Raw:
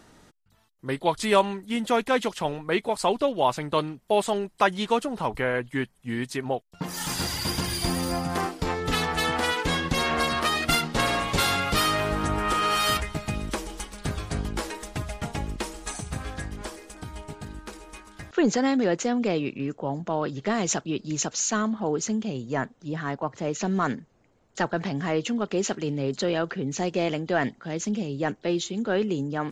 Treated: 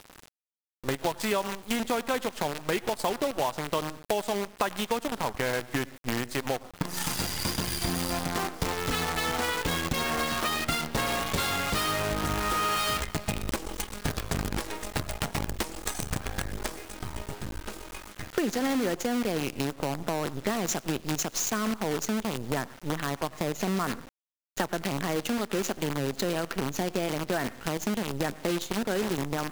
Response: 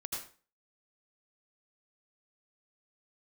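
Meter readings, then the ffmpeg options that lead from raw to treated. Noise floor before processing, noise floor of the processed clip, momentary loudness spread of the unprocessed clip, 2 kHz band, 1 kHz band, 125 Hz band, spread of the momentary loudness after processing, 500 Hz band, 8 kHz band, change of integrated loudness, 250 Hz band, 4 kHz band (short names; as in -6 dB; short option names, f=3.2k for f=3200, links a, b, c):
-62 dBFS, -51 dBFS, 11 LU, -3.0 dB, -4.0 dB, -2.5 dB, 6 LU, -4.0 dB, -1.5 dB, -3.5 dB, -3.5 dB, -2.5 dB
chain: -filter_complex "[0:a]asplit=2[a][b];[1:a]atrim=start_sample=2205,asetrate=42777,aresample=44100,lowpass=3.4k[c];[b][c]afir=irnorm=-1:irlink=0,volume=-15dB[d];[a][d]amix=inputs=2:normalize=0,acrusher=bits=5:dc=4:mix=0:aa=0.000001,acompressor=threshold=-30dB:ratio=6,volume=4.5dB"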